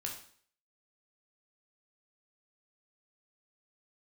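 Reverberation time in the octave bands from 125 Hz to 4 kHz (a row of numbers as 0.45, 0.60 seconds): 0.50, 0.55, 0.50, 0.55, 0.50, 0.50 seconds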